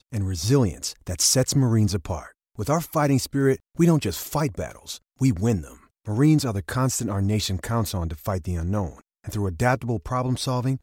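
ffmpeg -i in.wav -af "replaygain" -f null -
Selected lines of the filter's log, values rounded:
track_gain = +3.9 dB
track_peak = 0.304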